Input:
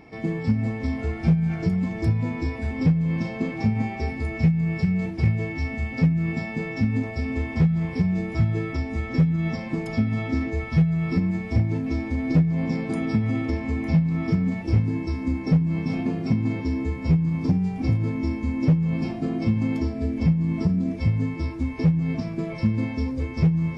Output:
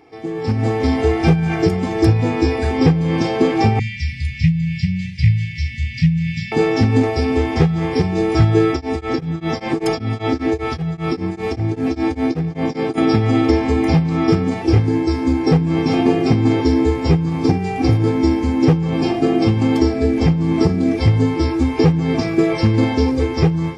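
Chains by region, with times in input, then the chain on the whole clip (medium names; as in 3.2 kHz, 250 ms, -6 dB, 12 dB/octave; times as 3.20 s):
3.79–6.52 s: Chebyshev band-stop 200–1900 Hz, order 5 + distance through air 76 m
8.72–12.98 s: compression 2:1, threshold -27 dBFS + tremolo of two beating tones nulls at 5.1 Hz
whole clip: high-pass 240 Hz 6 dB/octave; comb 2.5 ms, depth 72%; level rider gain up to 16.5 dB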